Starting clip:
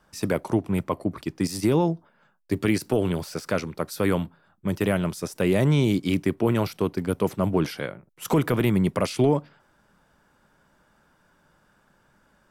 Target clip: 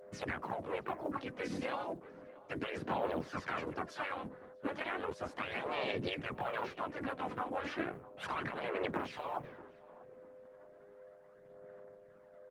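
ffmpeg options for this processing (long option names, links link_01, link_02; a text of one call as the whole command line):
ffmpeg -i in.wav -filter_complex "[0:a]agate=range=-33dB:threshold=-55dB:ratio=3:detection=peak,lowpass=2000,afftfilt=real='re*lt(hypot(re,im),0.158)':imag='im*lt(hypot(re,im),0.158)':win_size=1024:overlap=0.75,highpass=130,alimiter=limit=-22dB:level=0:latency=1:release=472,acompressor=threshold=-40dB:ratio=3,aeval=exprs='val(0)+0.001*sin(2*PI*510*n/s)':channel_layout=same,asplit=4[link_01][link_02][link_03][link_04];[link_02]asetrate=35002,aresample=44100,atempo=1.25992,volume=-4dB[link_05];[link_03]asetrate=52444,aresample=44100,atempo=0.840896,volume=-3dB[link_06];[link_04]asetrate=58866,aresample=44100,atempo=0.749154,volume=-11dB[link_07];[link_01][link_05][link_06][link_07]amix=inputs=4:normalize=0,acrusher=bits=9:mode=log:mix=0:aa=0.000001,aphaser=in_gain=1:out_gain=1:delay=4:decay=0.46:speed=0.34:type=sinusoidal,asplit=2[link_08][link_09];[link_09]adelay=641,lowpass=frequency=1200:poles=1,volume=-17.5dB,asplit=2[link_10][link_11];[link_11]adelay=641,lowpass=frequency=1200:poles=1,volume=0.41,asplit=2[link_12][link_13];[link_13]adelay=641,lowpass=frequency=1200:poles=1,volume=0.41[link_14];[link_08][link_10][link_12][link_14]amix=inputs=4:normalize=0,volume=1dB" -ar 48000 -c:a libopus -b:a 24k out.opus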